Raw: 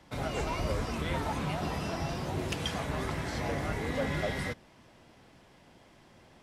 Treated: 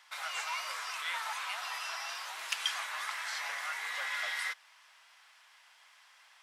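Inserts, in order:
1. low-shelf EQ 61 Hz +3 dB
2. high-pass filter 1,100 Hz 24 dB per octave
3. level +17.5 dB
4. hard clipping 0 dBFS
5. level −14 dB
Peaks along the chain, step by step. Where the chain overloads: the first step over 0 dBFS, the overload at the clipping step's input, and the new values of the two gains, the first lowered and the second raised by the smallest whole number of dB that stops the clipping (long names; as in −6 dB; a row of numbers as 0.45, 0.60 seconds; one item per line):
−17.5, −19.0, −1.5, −1.5, −15.5 dBFS
no step passes full scale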